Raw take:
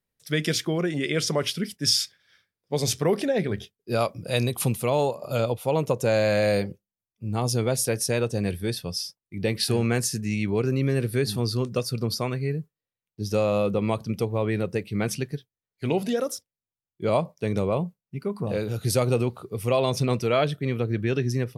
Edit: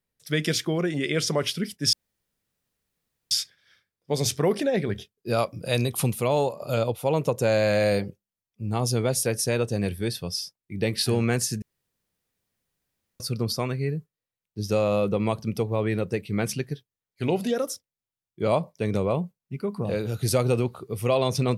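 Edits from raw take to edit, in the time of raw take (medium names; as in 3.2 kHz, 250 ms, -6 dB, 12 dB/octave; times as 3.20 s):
1.93 s: insert room tone 1.38 s
10.24–11.82 s: room tone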